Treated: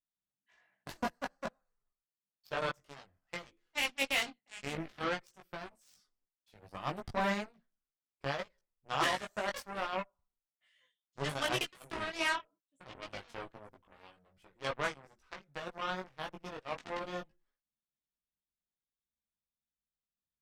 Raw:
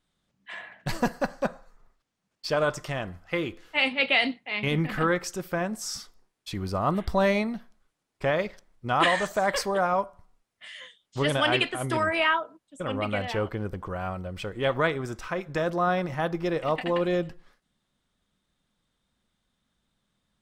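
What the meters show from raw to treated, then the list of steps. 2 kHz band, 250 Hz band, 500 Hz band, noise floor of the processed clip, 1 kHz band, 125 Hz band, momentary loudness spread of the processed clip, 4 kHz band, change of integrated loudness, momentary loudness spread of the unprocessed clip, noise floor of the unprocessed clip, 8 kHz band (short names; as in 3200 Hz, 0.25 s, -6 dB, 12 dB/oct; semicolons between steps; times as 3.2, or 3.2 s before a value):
-10.0 dB, -14.5 dB, -14.0 dB, under -85 dBFS, -10.0 dB, -15.5 dB, 17 LU, -8.5 dB, -10.5 dB, 15 LU, -80 dBFS, -7.5 dB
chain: added harmonics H 7 -16 dB, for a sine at -9.5 dBFS; chorus voices 4, 0.51 Hz, delay 18 ms, depth 4.1 ms; gain -5.5 dB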